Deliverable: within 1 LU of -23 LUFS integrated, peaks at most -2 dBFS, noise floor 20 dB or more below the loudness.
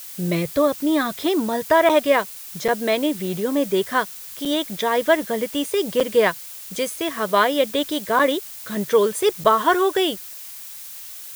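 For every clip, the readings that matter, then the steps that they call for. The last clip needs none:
dropouts 6; longest dropout 5.8 ms; noise floor -37 dBFS; noise floor target -41 dBFS; loudness -21.0 LUFS; peak -2.5 dBFS; loudness target -23.0 LUFS
-> interpolate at 1.89/2.68/4.45/6/8.19/9.44, 5.8 ms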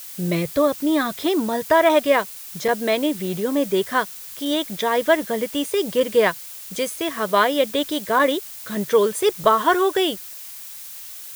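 dropouts 0; noise floor -37 dBFS; noise floor target -41 dBFS
-> denoiser 6 dB, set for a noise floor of -37 dBFS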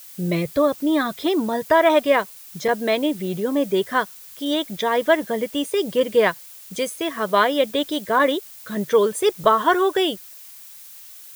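noise floor -42 dBFS; loudness -21.0 LUFS; peak -2.5 dBFS; loudness target -23.0 LUFS
-> gain -2 dB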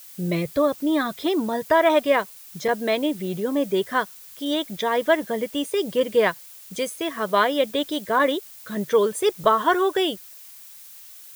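loudness -23.0 LUFS; peak -4.5 dBFS; noise floor -44 dBFS

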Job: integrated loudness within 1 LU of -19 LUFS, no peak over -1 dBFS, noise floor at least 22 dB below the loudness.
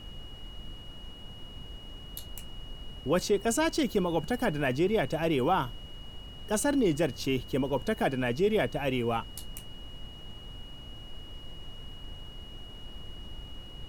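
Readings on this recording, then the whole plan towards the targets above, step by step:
steady tone 2900 Hz; tone level -48 dBFS; noise floor -46 dBFS; noise floor target -51 dBFS; loudness -29.0 LUFS; peak -15.0 dBFS; loudness target -19.0 LUFS
-> notch 2900 Hz, Q 30; noise print and reduce 6 dB; gain +10 dB

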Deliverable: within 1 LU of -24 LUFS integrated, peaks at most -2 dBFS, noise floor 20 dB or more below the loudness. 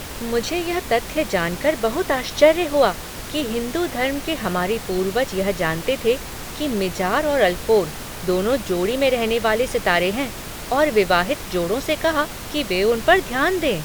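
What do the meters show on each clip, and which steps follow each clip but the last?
noise floor -33 dBFS; noise floor target -41 dBFS; loudness -20.5 LUFS; peak -1.5 dBFS; loudness target -24.0 LUFS
-> noise print and reduce 8 dB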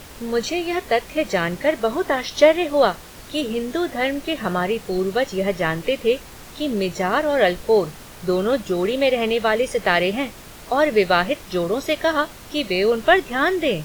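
noise floor -41 dBFS; loudness -21.0 LUFS; peak -1.5 dBFS; loudness target -24.0 LUFS
-> gain -3 dB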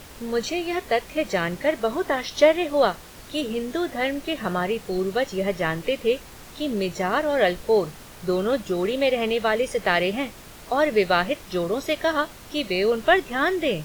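loudness -24.0 LUFS; peak -4.5 dBFS; noise floor -44 dBFS

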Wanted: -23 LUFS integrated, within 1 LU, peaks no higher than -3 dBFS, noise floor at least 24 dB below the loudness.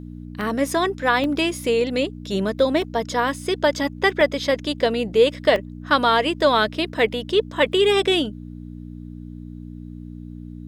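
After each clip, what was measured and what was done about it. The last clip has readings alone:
dropouts 5; longest dropout 1.2 ms; hum 60 Hz; harmonics up to 300 Hz; hum level -34 dBFS; loudness -20.5 LUFS; peak -4.5 dBFS; loudness target -23.0 LUFS
-> interpolate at 0.41/1.24/2.82/4.21/5.56, 1.2 ms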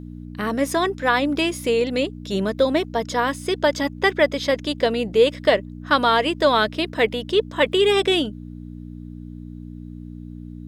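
dropouts 0; hum 60 Hz; harmonics up to 300 Hz; hum level -33 dBFS
-> de-hum 60 Hz, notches 5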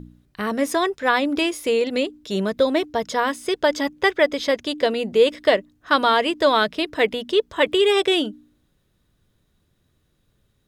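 hum none; loudness -21.0 LUFS; peak -5.0 dBFS; loudness target -23.0 LUFS
-> gain -2 dB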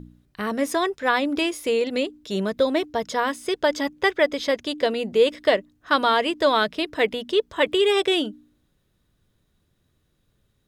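loudness -23.0 LUFS; peak -7.0 dBFS; noise floor -69 dBFS

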